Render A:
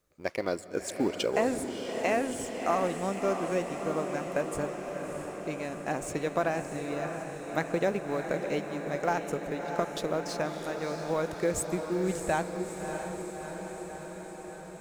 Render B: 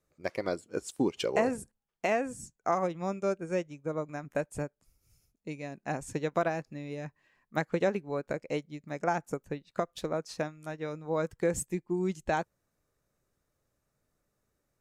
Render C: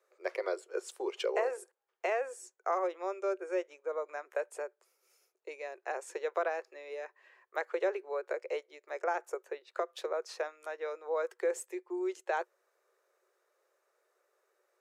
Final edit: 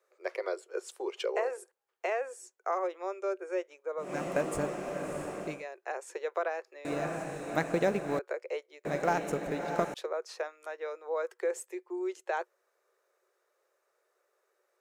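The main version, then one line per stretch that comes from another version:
C
0:04.09–0:05.54: punch in from A, crossfade 0.24 s
0:06.85–0:08.19: punch in from A
0:08.85–0:09.94: punch in from A
not used: B

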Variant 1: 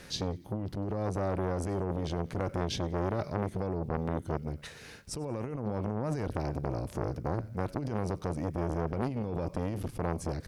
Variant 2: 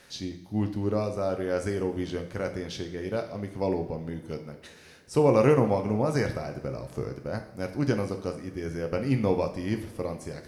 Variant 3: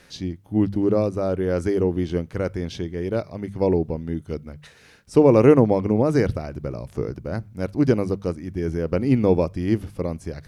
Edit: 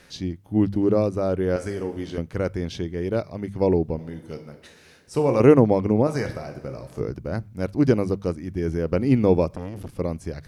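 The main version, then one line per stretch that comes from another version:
3
0:01.56–0:02.18: punch in from 2
0:03.99–0:05.40: punch in from 2
0:06.07–0:07.00: punch in from 2
0:09.50–0:09.94: punch in from 1

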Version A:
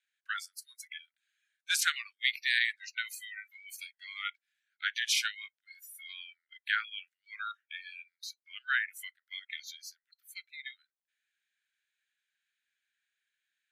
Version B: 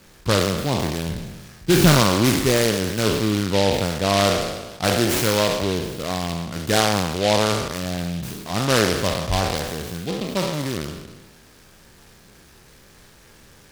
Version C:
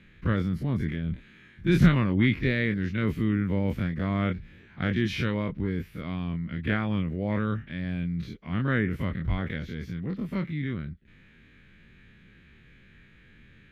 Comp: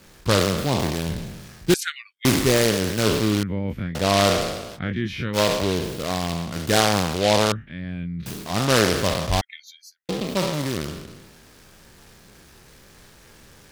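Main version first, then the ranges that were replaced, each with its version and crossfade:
B
0:01.74–0:02.25: punch in from A
0:03.43–0:03.95: punch in from C
0:04.77–0:05.36: punch in from C, crossfade 0.06 s
0:07.52–0:08.26: punch in from C
0:09.41–0:10.09: punch in from A

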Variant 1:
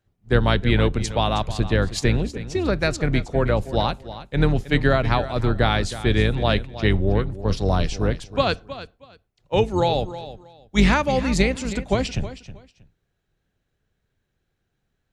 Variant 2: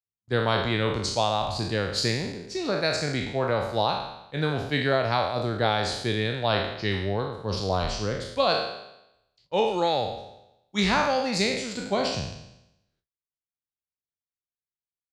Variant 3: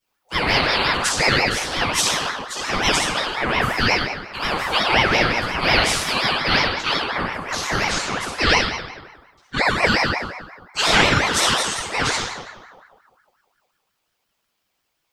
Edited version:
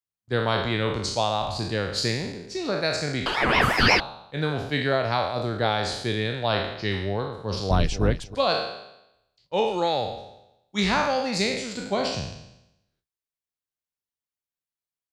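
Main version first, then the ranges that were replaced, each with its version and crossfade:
2
0:03.26–0:04.00: punch in from 3
0:07.71–0:08.35: punch in from 1

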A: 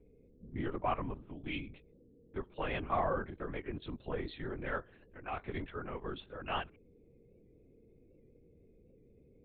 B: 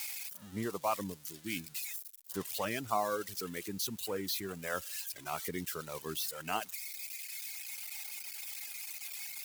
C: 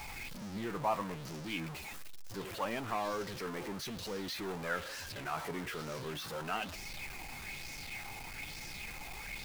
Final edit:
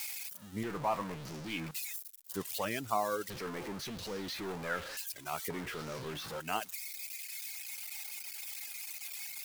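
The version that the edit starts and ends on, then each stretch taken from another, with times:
B
0:00.63–0:01.71: punch in from C
0:03.30–0:04.97: punch in from C
0:05.50–0:06.40: punch in from C
not used: A

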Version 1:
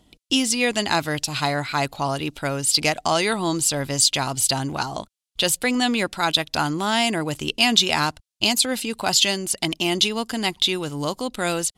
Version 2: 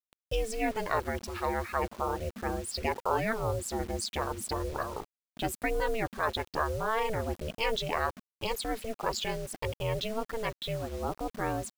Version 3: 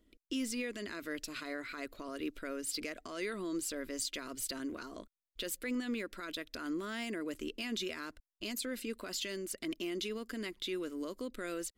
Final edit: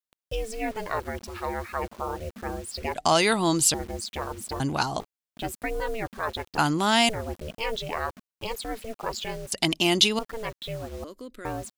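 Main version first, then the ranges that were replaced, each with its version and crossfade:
2
0:02.95–0:03.74: punch in from 1
0:04.60–0:05.00: punch in from 1
0:06.58–0:07.09: punch in from 1
0:09.52–0:10.19: punch in from 1
0:11.04–0:11.45: punch in from 3

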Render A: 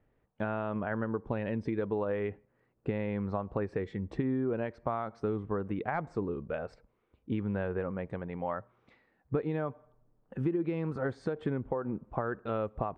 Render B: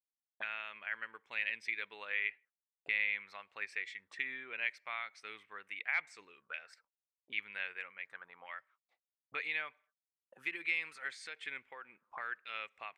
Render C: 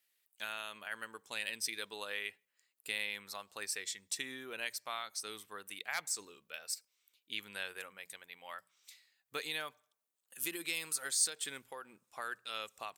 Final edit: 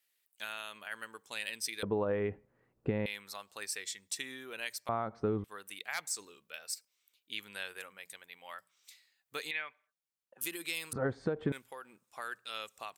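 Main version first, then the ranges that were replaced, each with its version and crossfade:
C
0:01.83–0:03.06: punch in from A
0:04.89–0:05.44: punch in from A
0:09.51–0:10.41: punch in from B
0:10.93–0:11.52: punch in from A

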